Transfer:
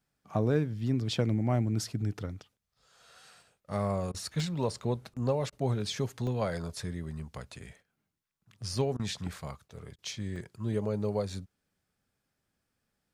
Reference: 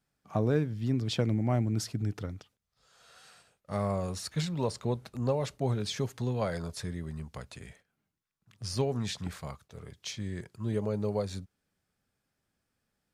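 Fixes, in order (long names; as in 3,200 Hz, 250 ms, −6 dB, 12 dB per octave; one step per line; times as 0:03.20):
repair the gap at 0:03.41/0:04.40/0:06.27/0:07.96/0:10.36, 1.1 ms
repair the gap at 0:04.12/0:05.14/0:05.50/0:08.97/0:09.96, 23 ms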